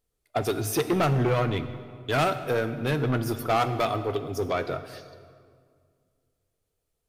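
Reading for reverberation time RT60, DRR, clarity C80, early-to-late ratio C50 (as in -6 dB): 2.0 s, 10.0 dB, 12.5 dB, 11.5 dB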